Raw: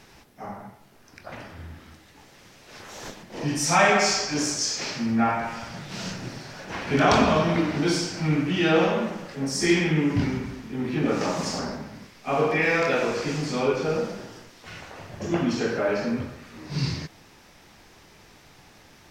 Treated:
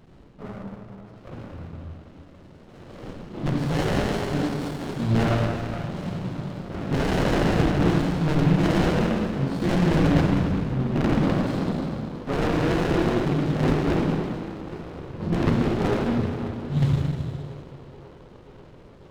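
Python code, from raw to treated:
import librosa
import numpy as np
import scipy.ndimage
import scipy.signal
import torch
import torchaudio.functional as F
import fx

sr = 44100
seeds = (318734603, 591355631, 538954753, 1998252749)

y = fx.peak_eq(x, sr, hz=2300.0, db=-12.0, octaves=0.51)
y = (np.mod(10.0 ** (17.0 / 20.0) * y + 1.0, 2.0) - 1.0) / 10.0 ** (17.0 / 20.0)
y = fx.formant_shift(y, sr, semitones=-4)
y = scipy.signal.sosfilt(scipy.signal.butter(4, 3400.0, 'lowpass', fs=sr, output='sos'), y)
y = fx.low_shelf(y, sr, hz=160.0, db=5.5)
y = fx.echo_banded(y, sr, ms=535, feedback_pct=78, hz=530.0, wet_db=-15)
y = fx.rev_plate(y, sr, seeds[0], rt60_s=2.2, hf_ratio=1.0, predelay_ms=0, drr_db=-1.5)
y = fx.running_max(y, sr, window=33)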